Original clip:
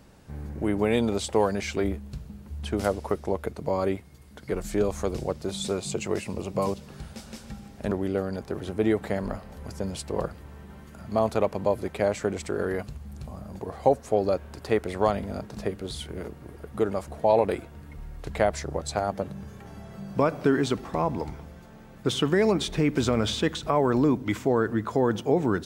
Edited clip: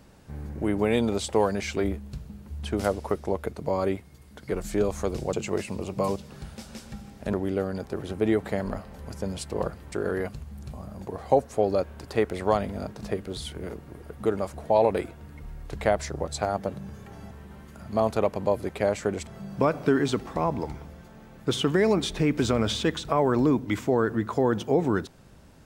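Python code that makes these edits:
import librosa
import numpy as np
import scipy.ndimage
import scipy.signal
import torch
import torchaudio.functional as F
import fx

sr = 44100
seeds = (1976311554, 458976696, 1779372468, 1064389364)

y = fx.edit(x, sr, fx.cut(start_s=5.33, length_s=0.58),
    fx.move(start_s=10.5, length_s=1.96, to_s=19.85), tone=tone)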